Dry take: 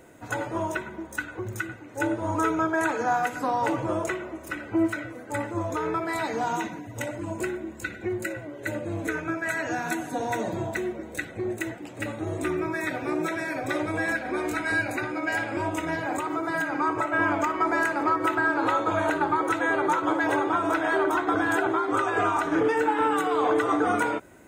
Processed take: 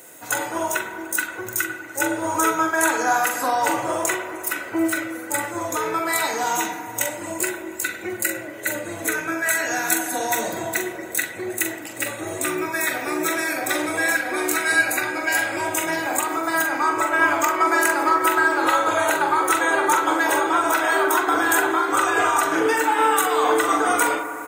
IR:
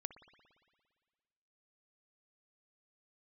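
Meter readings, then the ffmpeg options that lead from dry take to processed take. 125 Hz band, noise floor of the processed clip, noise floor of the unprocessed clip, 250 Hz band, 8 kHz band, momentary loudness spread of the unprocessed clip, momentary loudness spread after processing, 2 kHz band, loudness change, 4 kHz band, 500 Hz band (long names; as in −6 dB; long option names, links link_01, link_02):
−6.5 dB, −35 dBFS, −42 dBFS, +1.0 dB, +17.5 dB, 10 LU, 8 LU, +7.0 dB, +5.5 dB, +11.0 dB, +3.0 dB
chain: -filter_complex "[0:a]aemphasis=mode=production:type=riaa,asplit=2[link_01][link_02];[link_02]adelay=43,volume=-7dB[link_03];[link_01][link_03]amix=inputs=2:normalize=0[link_04];[1:a]atrim=start_sample=2205,asetrate=28224,aresample=44100[link_05];[link_04][link_05]afir=irnorm=-1:irlink=0,volume=6dB"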